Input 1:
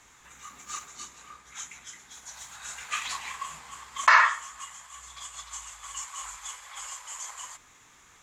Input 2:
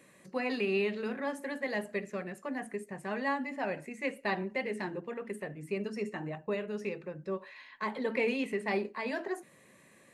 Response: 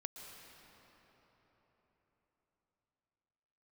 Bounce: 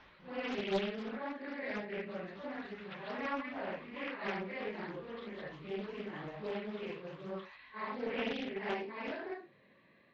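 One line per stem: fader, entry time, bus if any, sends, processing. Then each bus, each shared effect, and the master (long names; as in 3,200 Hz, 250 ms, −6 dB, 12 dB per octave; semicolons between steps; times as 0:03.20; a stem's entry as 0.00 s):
0.0 dB, 0.00 s, muted 0:01.03–0:02.08, no send, downward compressor 10 to 1, threshold −36 dBFS, peak gain reduction 22.5 dB; pitch modulation by a square or saw wave saw up 5.1 Hz, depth 250 cents; automatic ducking −11 dB, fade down 0.35 s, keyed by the second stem
−5.0 dB, 0.00 s, no send, random phases in long frames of 200 ms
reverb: not used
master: Butterworth low-pass 4,300 Hz 48 dB per octave; highs frequency-modulated by the lows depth 0.67 ms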